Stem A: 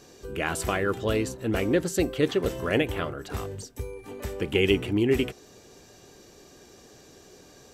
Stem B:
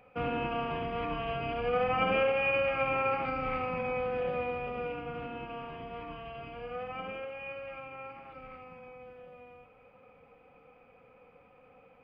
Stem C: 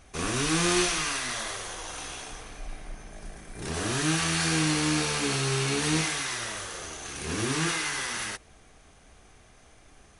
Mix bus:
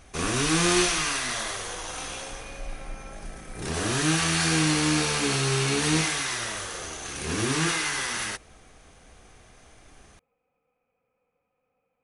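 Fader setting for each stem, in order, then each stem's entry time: mute, -18.5 dB, +2.5 dB; mute, 0.00 s, 0.00 s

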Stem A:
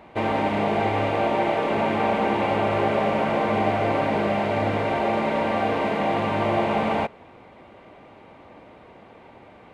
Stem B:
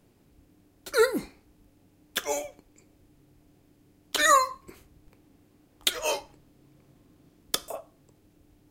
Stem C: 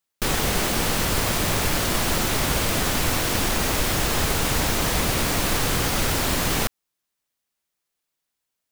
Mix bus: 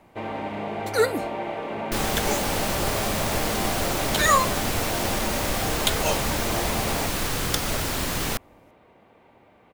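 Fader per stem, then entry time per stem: -8.0 dB, +0.5 dB, -4.0 dB; 0.00 s, 0.00 s, 1.70 s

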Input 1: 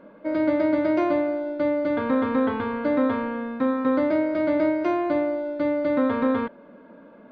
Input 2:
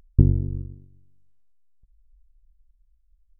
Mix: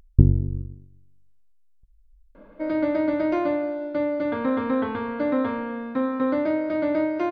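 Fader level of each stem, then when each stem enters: -1.5 dB, +1.0 dB; 2.35 s, 0.00 s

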